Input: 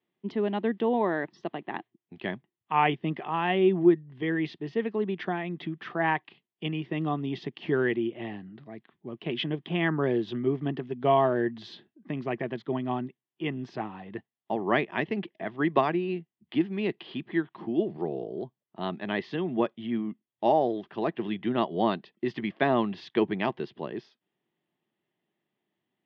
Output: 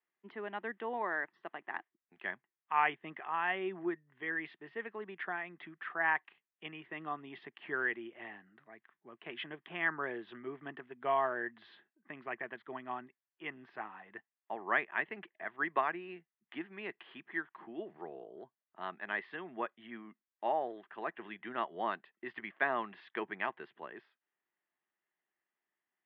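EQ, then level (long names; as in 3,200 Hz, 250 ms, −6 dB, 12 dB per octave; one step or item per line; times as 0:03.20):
resonant band-pass 1,600 Hz, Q 1.8
high-frequency loss of the air 250 metres
+2.0 dB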